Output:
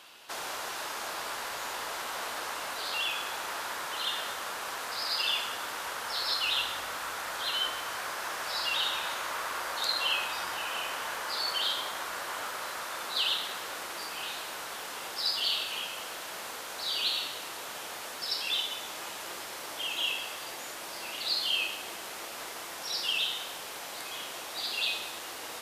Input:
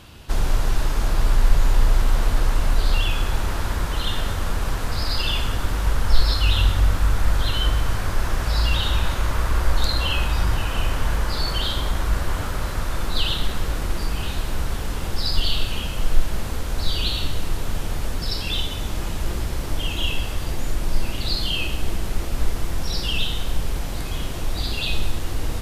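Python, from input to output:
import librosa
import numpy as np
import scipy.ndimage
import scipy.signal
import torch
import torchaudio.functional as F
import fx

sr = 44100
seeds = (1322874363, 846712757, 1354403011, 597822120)

y = scipy.signal.sosfilt(scipy.signal.butter(2, 670.0, 'highpass', fs=sr, output='sos'), x)
y = F.gain(torch.from_numpy(y), -3.0).numpy()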